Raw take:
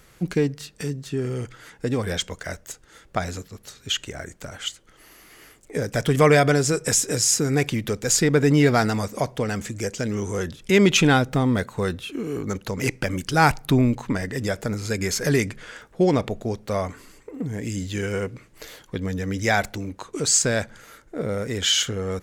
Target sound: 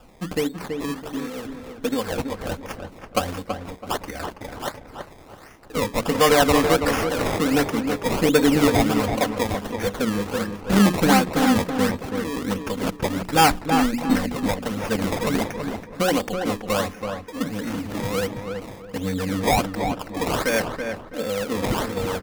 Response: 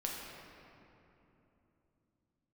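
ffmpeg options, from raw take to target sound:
-filter_complex "[0:a]bandreject=f=60:t=h:w=6,bandreject=f=120:t=h:w=6,bandreject=f=180:t=h:w=6,bandreject=f=240:t=h:w=6,bandreject=f=300:t=h:w=6,bandreject=f=360:t=h:w=6,bandreject=f=420:t=h:w=6,aecho=1:1:3.9:0.97,acrossover=split=540|1100[a][b][c];[a]tremolo=f=1.2:d=0.54[d];[c]alimiter=limit=-15dB:level=0:latency=1:release=36[e];[d][b][e]amix=inputs=3:normalize=0,acrusher=samples=21:mix=1:aa=0.000001:lfo=1:lforange=21:lforate=1.4,asplit=2[f][g];[g]adelay=329,lowpass=f=2.1k:p=1,volume=-5.5dB,asplit=2[h][i];[i]adelay=329,lowpass=f=2.1k:p=1,volume=0.31,asplit=2[j][k];[k]adelay=329,lowpass=f=2.1k:p=1,volume=0.31,asplit=2[l][m];[m]adelay=329,lowpass=f=2.1k:p=1,volume=0.31[n];[f][h][j][l][n]amix=inputs=5:normalize=0"

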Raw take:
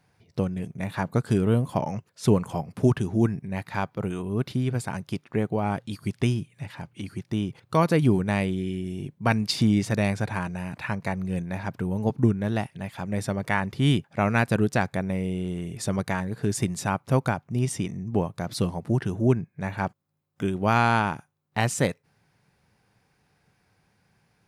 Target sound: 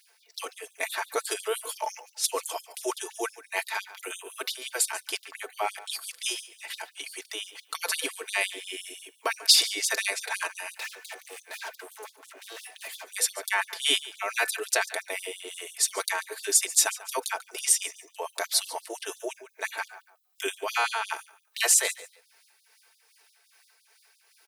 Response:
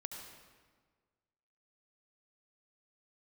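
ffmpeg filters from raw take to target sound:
-filter_complex "[0:a]bass=f=250:g=-10,treble=f=4k:g=-5,aecho=1:1:4.5:0.65,bandreject=f=249.2:t=h:w=4,bandreject=f=498.4:t=h:w=4,bandreject=f=747.6:t=h:w=4,bandreject=f=996.8:t=h:w=4,bandreject=f=1.246k:t=h:w=4,bandreject=f=1.4952k:t=h:w=4,bandreject=f=1.7444k:t=h:w=4,alimiter=limit=-17.5dB:level=0:latency=1:release=21,crystalizer=i=8:c=0,asettb=1/sr,asplit=3[a][b][c];[a]atrim=end=10.764[d];[b]atrim=start=10.76:end=13.08,asetpts=PTS-STARTPTS,afade=t=in:d=0.004:c=qsin,afade=t=out:st=2.316:d=0.004:c=qsin,volume=33dB,asoftclip=hard,volume=-33dB[e];[c]atrim=start=13.076[f];[d][e]acrossfade=d=0.004:c1=hsin:c2=qsin[g];[g][f]acrossfade=d=0.004:c1=qsin:c2=hsin,tremolo=f=2.5:d=0.39,aecho=1:1:142|284:0.133|0.0307,afftfilt=real='re*gte(b*sr/1024,270*pow(3400/270,0.5+0.5*sin(2*PI*5.8*pts/sr)))':imag='im*gte(b*sr/1024,270*pow(3400/270,0.5+0.5*sin(2*PI*5.8*pts/sr)))':win_size=1024:overlap=0.75"

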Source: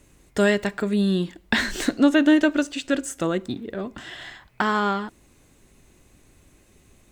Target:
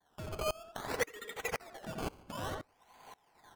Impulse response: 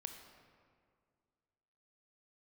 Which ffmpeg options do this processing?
-filter_complex "[0:a]afftfilt=real='real(if(between(b,1,1008),(2*floor((b-1)/24)+1)*24-b,b),0)':imag='imag(if(between(b,1,1008),(2*floor((b-1)/24)+1)*24-b,b),0)*if(between(b,1,1008),-1,1)':win_size=2048:overlap=0.75,highpass=f=280:w=0.5412,highpass=f=280:w=1.3066,agate=range=-33dB:threshold=-54dB:ratio=3:detection=peak,aecho=1:1:5.3:0.71,acompressor=threshold=-35dB:ratio=4,acrusher=samples=32:mix=1:aa=0.000001:lfo=1:lforange=32:lforate=0.29,asplit=2[a][b];[b]adelay=173,lowpass=f=1.1k:p=1,volume=-5.5dB,asplit=2[c][d];[d]adelay=173,lowpass=f=1.1k:p=1,volume=0.26,asplit=2[e][f];[f]adelay=173,lowpass=f=1.1k:p=1,volume=0.26[g];[a][c][e][g]amix=inputs=4:normalize=0,aresample=32000,aresample=44100,asetrate=88200,aresample=44100,aeval=exprs='val(0)*pow(10,-24*if(lt(mod(-1.9*n/s,1),2*abs(-1.9)/1000),1-mod(-1.9*n/s,1)/(2*abs(-1.9)/1000),(mod(-1.9*n/s,1)-2*abs(-1.9)/1000)/(1-2*abs(-1.9)/1000))/20)':c=same,volume=4dB"

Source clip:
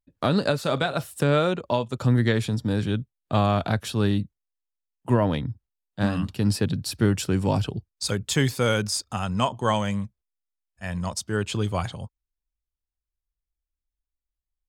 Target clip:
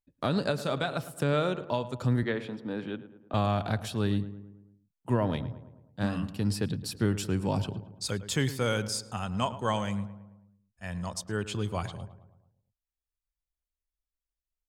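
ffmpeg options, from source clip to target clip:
-filter_complex "[0:a]asettb=1/sr,asplit=3[a][b][c];[a]atrim=end=2.234[d];[b]atrim=start=2.23:end=3.34,asetpts=PTS-STARTPTS,afade=t=in:d=0.004:c=qsin,afade=t=out:st=1.106:d=0.004:c=qsin,acrossover=split=200 3400:gain=0.0708 1 0.112[e][f][g];[e][f][g]amix=inputs=3:normalize=0[h];[c]atrim=start=3.336[i];[d][h]acrossfade=d=0.004:c1=hsin:c2=qsin[j];[j][i]acrossfade=d=0.004:c1=qsin:c2=hsin,asplit=2[k][l];[l]adelay=109,lowpass=f=1.8k:p=1,volume=-13.5dB,asplit=2[m][n];[n]adelay=109,lowpass=f=1.8k:p=1,volume=0.55,asplit=2[o][p];[p]adelay=109,lowpass=f=1.8k:p=1,volume=0.55,asplit=2[q][r];[r]adelay=109,lowpass=f=1.8k:p=1,volume=0.55,asplit=2[s][t];[t]adelay=109,lowpass=f=1.8k:p=1,volume=0.55,asplit=2[u][v];[v]adelay=109,lowpass=f=1.8k:p=1,volume=0.55[w];[k][m][o][q][s][u][w]amix=inputs=7:normalize=0,volume=-6dB"

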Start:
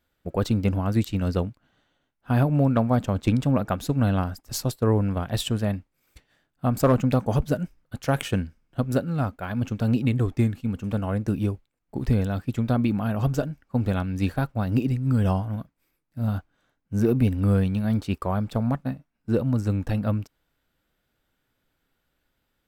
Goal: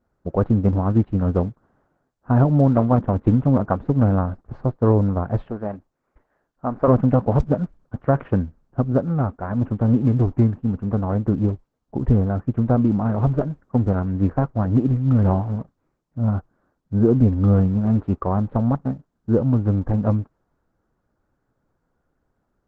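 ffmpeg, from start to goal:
-filter_complex "[0:a]lowpass=f=1.3k:w=0.5412,lowpass=f=1.3k:w=1.3066,asettb=1/sr,asplit=3[a][b][c];[a]atrim=end=5.474[d];[b]atrim=start=5.47:end=6.88,asetpts=PTS-STARTPTS,afade=t=in:d=0.004:c=qsin,afade=t=out:st=1.406:d=0.004:c=qsin,equalizer=f=92:t=o:w=2.5:g=-15[e];[c]atrim=start=6.876[f];[d][e]acrossfade=d=0.004:c1=hsin:c2=qsin[g];[g][f]acrossfade=d=0.004:c1=qsin:c2=hsin,volume=5dB" -ar 48000 -c:a libopus -b:a 10k

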